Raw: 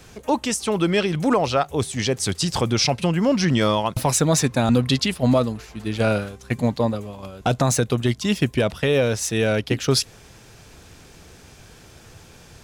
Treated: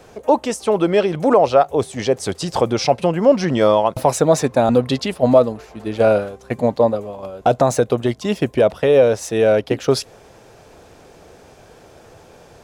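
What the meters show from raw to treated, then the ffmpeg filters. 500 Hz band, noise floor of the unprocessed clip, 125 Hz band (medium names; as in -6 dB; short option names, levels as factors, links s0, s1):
+8.0 dB, -48 dBFS, -2.5 dB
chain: -af "equalizer=f=590:w=0.65:g=14.5,volume=0.562"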